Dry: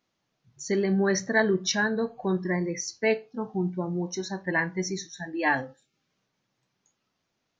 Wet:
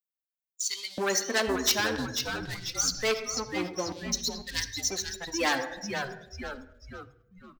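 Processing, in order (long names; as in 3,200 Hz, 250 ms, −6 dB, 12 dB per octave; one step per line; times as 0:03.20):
spectral dynamics exaggerated over time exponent 2
high-pass filter 68 Hz 24 dB per octave
high-shelf EQ 5,200 Hz +6.5 dB
leveller curve on the samples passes 2
auto-filter high-pass square 0.51 Hz 420–4,100 Hz
echo with shifted repeats 493 ms, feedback 35%, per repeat −130 Hz, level −12 dB
on a send at −11.5 dB: convolution reverb RT60 0.80 s, pre-delay 4 ms
on the sum: every bin compressed towards the loudest bin 2 to 1
level −7 dB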